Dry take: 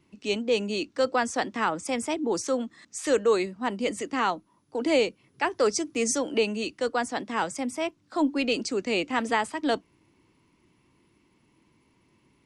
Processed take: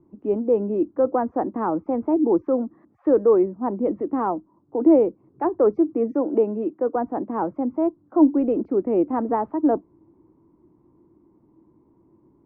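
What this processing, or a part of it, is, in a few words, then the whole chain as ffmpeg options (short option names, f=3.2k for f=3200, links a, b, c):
under water: -filter_complex "[0:a]lowpass=f=1k:w=0.5412,lowpass=f=1k:w=1.3066,equalizer=f=330:t=o:w=0.4:g=9,asettb=1/sr,asplit=3[a][b][c];[a]atrim=end=5.954[d];[b]atrim=start=5.95:end=6.96,asetpts=PTS-STARTPTS,afade=t=in:d=0.004:c=qsin,afade=t=out:st=1.006:d=0.004:c=qsin,highpass=180[e];[c]atrim=start=6.956[f];[d][e]acrossfade=d=0.004:c1=hsin:c2=qsin[g];[g][f]acrossfade=d=0.004:c1=qsin:c2=hsin,volume=4dB"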